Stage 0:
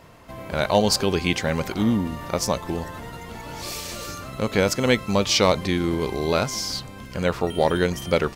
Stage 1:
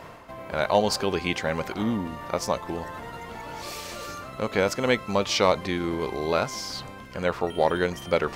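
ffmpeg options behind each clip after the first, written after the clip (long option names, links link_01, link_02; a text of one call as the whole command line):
ffmpeg -i in.wav -af "equalizer=frequency=1000:width=0.34:gain=8,areverse,acompressor=mode=upward:threshold=-24dB:ratio=2.5,areverse,volume=-8.5dB" out.wav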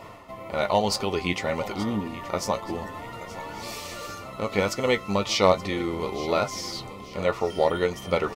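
ffmpeg -i in.wav -af "asuperstop=centerf=1600:order=20:qfactor=7.5,flanger=delay=8.9:depth=1.9:regen=47:speed=1.9:shape=sinusoidal,aecho=1:1:876|1752|2628:0.15|0.0598|0.0239,volume=4dB" out.wav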